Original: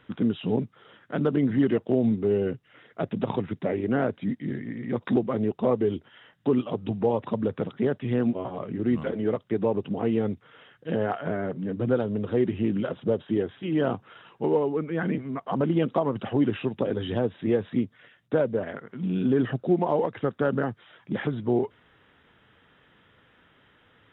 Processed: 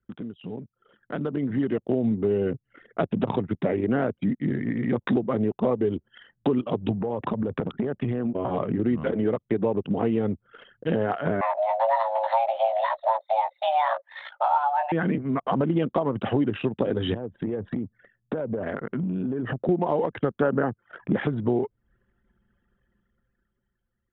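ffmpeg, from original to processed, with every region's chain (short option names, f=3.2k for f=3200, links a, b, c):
-filter_complex "[0:a]asettb=1/sr,asplit=3[a][b][c];[a]atrim=end=6.984[d];[b]atrim=start=6.98:end=8.5,asetpts=PTS-STARTPTS,afade=t=in:d=0.004:c=qsin,afade=t=out:st=1.516:d=0.004:c=qsin,lowpass=f=3k:p=1,acompressor=threshold=-30dB:ratio=12:attack=3.2:release=140:knee=1:detection=peak[e];[c]atrim=start=8.496[f];[d][e]acrossfade=d=0.004:c1=hsin:c2=qsin[g];[g][f]acrossfade=d=0.004:c1=qsin:c2=hsin,asettb=1/sr,asplit=3[h][i][j];[h]atrim=end=11.414[k];[i]atrim=start=11.41:end=14.92,asetpts=PTS-STARTPTS,afade=t=in:d=0.004:c=qsin,afade=t=out:st=3.506:d=0.004:c=qsin,asplit=2[l][m];[m]adelay=17,volume=-3.5dB[n];[l][n]amix=inputs=2:normalize=0,atrim=end_sample=154791,afreqshift=440[o];[j]atrim=start=14.916[p];[k][o]acrossfade=d=0.004:c1=hsin:c2=qsin[q];[q][p]acrossfade=d=0.004:c1=qsin:c2=hsin,asettb=1/sr,asplit=3[r][s][t];[r]atrim=end=17.144[u];[s]atrim=start=17.14:end=19.69,asetpts=PTS-STARTPTS,afade=t=in:d=0.004:c=qsin,afade=t=out:st=2.546:d=0.004:c=qsin,acompressor=threshold=-35dB:ratio=12:attack=3.2:release=140:knee=1:detection=peak,lowpass=f=2.2k:p=1[v];[t]atrim=start=19.686[w];[u][v]acrossfade=d=0.004:c1=hsin:c2=qsin[x];[x][w]acrossfade=d=0.004:c1=qsin:c2=hsin,asettb=1/sr,asplit=3[y][z][aa];[y]atrim=end=20.424[ab];[z]atrim=start=20.42:end=21.19,asetpts=PTS-STARTPTS,afade=t=in:d=0.004:c=qsin,afade=t=out:st=0.766:d=0.004:c=qsin,lowshelf=f=190:g=-6.5,acontrast=52,lowpass=1.9k[ac];[aa]atrim=start=21.186[ad];[ab][ac]acrossfade=d=0.004:c1=hsin:c2=qsin[ae];[ae][ad]acrossfade=d=0.004:c1=qsin:c2=hsin,acompressor=threshold=-37dB:ratio=3,anlmdn=0.0158,dynaudnorm=f=310:g=9:m=12.5dB"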